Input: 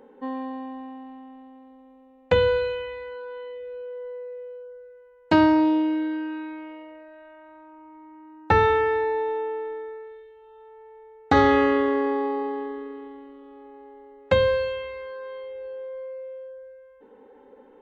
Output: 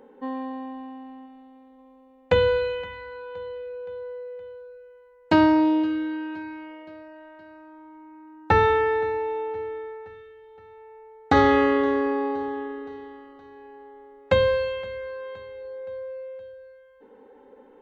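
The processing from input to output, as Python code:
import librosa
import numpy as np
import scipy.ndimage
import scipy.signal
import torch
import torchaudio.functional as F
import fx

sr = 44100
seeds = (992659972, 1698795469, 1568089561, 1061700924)

y = fx.echo_feedback(x, sr, ms=519, feedback_pct=55, wet_db=-21.0)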